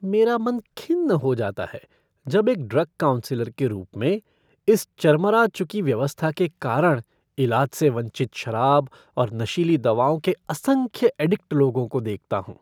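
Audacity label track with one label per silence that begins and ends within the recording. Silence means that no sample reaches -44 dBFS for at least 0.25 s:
1.840000	2.250000	silence
4.200000	4.680000	silence
7.020000	7.380000	silence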